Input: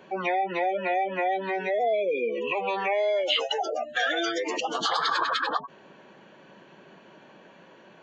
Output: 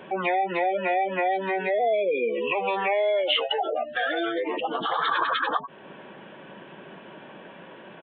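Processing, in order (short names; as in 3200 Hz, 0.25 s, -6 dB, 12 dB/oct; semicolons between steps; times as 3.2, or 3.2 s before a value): 3.94–4.99 high shelf 2000 Hz -8.5 dB; in parallel at +2.5 dB: compressor, threshold -40 dBFS, peak gain reduction 18 dB; on the sum: downsampling 8000 Hz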